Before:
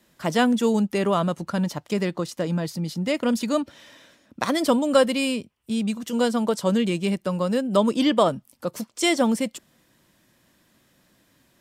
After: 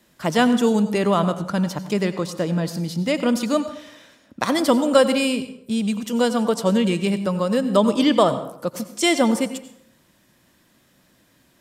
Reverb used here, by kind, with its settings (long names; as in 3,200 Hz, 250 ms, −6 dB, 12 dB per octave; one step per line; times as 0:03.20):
dense smooth reverb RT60 0.7 s, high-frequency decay 0.65×, pre-delay 75 ms, DRR 11.5 dB
level +2.5 dB